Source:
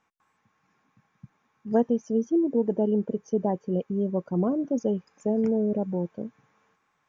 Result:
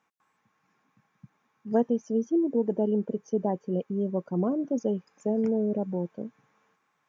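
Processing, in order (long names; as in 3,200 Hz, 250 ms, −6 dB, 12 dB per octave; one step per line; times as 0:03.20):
high-pass filter 120 Hz
level −1.5 dB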